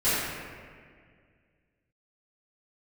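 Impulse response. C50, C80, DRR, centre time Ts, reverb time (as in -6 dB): -4.0 dB, -1.5 dB, -17.0 dB, 134 ms, 1.9 s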